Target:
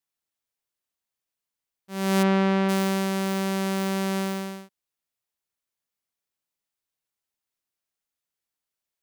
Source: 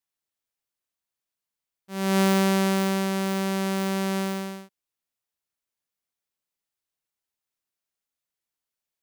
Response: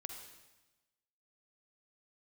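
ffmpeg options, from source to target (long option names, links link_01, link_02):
-filter_complex "[0:a]asplit=3[link_01][link_02][link_03];[link_01]afade=type=out:start_time=2.22:duration=0.02[link_04];[link_02]lowpass=2900,afade=type=in:start_time=2.22:duration=0.02,afade=type=out:start_time=2.68:duration=0.02[link_05];[link_03]afade=type=in:start_time=2.68:duration=0.02[link_06];[link_04][link_05][link_06]amix=inputs=3:normalize=0"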